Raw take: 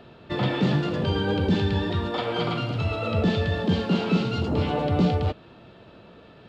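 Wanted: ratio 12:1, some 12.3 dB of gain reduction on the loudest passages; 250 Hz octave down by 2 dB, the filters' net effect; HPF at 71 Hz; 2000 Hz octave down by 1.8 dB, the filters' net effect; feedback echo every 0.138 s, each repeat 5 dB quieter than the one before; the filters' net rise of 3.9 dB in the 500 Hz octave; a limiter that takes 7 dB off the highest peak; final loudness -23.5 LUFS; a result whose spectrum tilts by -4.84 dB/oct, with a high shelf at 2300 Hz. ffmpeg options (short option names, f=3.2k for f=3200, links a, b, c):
-af "highpass=71,equalizer=f=250:t=o:g=-4.5,equalizer=f=500:t=o:g=6,equalizer=f=2k:t=o:g=-7,highshelf=f=2.3k:g=7,acompressor=threshold=-30dB:ratio=12,alimiter=level_in=4.5dB:limit=-24dB:level=0:latency=1,volume=-4.5dB,aecho=1:1:138|276|414|552|690|828|966:0.562|0.315|0.176|0.0988|0.0553|0.031|0.0173,volume=13dB"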